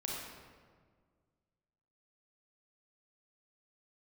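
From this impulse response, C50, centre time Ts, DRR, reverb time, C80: -1.5 dB, 95 ms, -3.5 dB, 1.7 s, 1.0 dB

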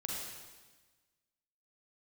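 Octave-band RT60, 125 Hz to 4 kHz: 1.5, 1.4, 1.3, 1.3, 1.3, 1.3 s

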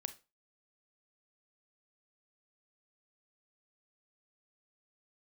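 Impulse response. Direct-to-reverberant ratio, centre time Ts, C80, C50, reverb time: 10.0 dB, 5 ms, 23.0 dB, 15.5 dB, 0.30 s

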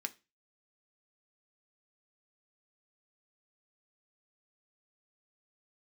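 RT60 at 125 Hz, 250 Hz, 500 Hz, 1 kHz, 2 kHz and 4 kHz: 0.40, 0.30, 0.30, 0.25, 0.30, 0.30 s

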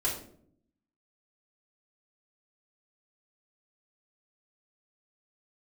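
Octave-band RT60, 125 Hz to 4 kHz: 1.0, 1.0, 0.75, 0.50, 0.40, 0.35 s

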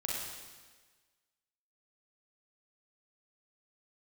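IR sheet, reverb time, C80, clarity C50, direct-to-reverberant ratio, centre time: 1.4 s, 1.0 dB, -2.0 dB, -4.5 dB, 94 ms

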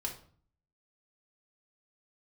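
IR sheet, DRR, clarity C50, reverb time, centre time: -1.5 dB, 9.0 dB, 0.50 s, 17 ms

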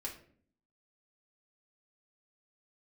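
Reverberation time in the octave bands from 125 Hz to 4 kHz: 0.75, 0.85, 0.60, 0.45, 0.45, 0.35 s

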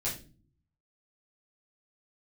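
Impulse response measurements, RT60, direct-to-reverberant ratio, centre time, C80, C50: 0.35 s, -8.5 dB, 28 ms, 14.0 dB, 8.0 dB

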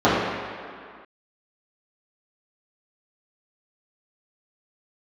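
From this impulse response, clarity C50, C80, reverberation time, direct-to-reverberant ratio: -1.0 dB, 1.0 dB, 2.1 s, -12.5 dB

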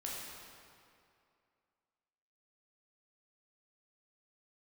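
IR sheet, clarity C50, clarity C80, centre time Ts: -1.5 dB, 0.5 dB, 0.128 s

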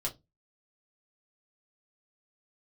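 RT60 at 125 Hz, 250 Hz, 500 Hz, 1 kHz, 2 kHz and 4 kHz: 0.35, 0.30, 0.25, 0.15, 0.15, 0.15 s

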